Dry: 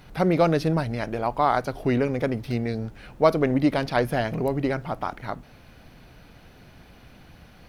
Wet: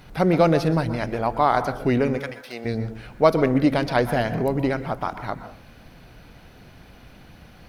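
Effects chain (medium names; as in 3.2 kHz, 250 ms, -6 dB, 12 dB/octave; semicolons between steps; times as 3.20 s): 2.17–2.64 s: high-pass 1.4 kHz -> 460 Hz 12 dB/octave; reverberation RT60 0.45 s, pre-delay 112 ms, DRR 11.5 dB; trim +2 dB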